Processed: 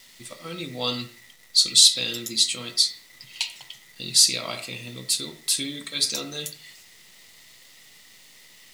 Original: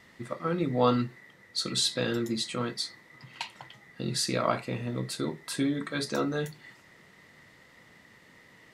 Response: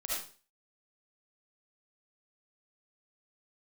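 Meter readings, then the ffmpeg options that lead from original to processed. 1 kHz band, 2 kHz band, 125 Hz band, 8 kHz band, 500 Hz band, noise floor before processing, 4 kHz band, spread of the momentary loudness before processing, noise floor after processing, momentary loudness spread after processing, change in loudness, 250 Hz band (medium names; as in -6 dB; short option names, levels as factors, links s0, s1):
-7.5 dB, +2.0 dB, -7.0 dB, +15.0 dB, -7.0 dB, -57 dBFS, +13.0 dB, 14 LU, -52 dBFS, 19 LU, +9.0 dB, -7.0 dB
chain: -filter_complex "[0:a]aexciter=amount=10.4:drive=5.6:freq=2300,acrusher=bits=8:dc=4:mix=0:aa=0.000001,asplit=2[s0][s1];[1:a]atrim=start_sample=2205,lowpass=2200[s2];[s1][s2]afir=irnorm=-1:irlink=0,volume=0.251[s3];[s0][s3]amix=inputs=2:normalize=0,volume=0.376"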